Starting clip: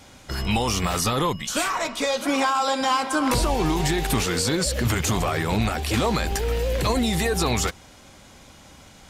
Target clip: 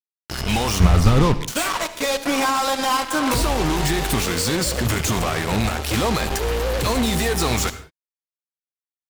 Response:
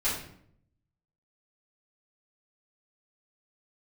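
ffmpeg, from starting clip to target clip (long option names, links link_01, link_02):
-filter_complex "[0:a]asettb=1/sr,asplit=3[link_01][link_02][link_03];[link_01]atrim=end=0.804[link_04];[link_02]atrim=start=0.8:end=1.34,asetpts=PTS-STARTPTS,afade=type=in:duration=0.004:curve=qsin,afade=type=out:start_time=0.536:duration=0.004:curve=qsin,aemphasis=mode=reproduction:type=riaa[link_05];[link_03]atrim=start=1.336[link_06];[link_04][link_05]acrossfade=duration=0.004:curve1=hsin:curve2=qsin[link_07];[link_07][link_06]acrossfade=duration=0.004:curve1=qsin:curve2=hsin,acrusher=bits=3:mix=0:aa=0.5,asplit=2[link_08][link_09];[1:a]atrim=start_sample=2205,atrim=end_sample=6174,adelay=66[link_10];[link_09][link_10]afir=irnorm=-1:irlink=0,volume=-21.5dB[link_11];[link_08][link_11]amix=inputs=2:normalize=0,volume=1dB"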